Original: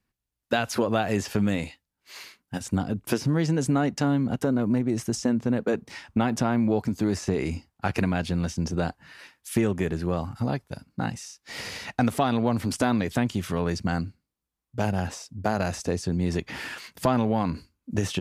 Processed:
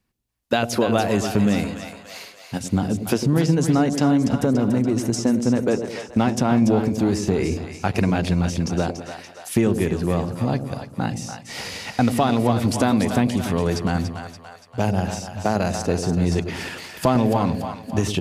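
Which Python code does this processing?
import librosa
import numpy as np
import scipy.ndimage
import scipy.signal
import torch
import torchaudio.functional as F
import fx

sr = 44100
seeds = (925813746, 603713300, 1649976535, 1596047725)

y = fx.peak_eq(x, sr, hz=1600.0, db=-3.5, octaves=0.77)
y = fx.echo_split(y, sr, split_hz=580.0, low_ms=102, high_ms=287, feedback_pct=52, wet_db=-7.5)
y = y * librosa.db_to_amplitude(4.5)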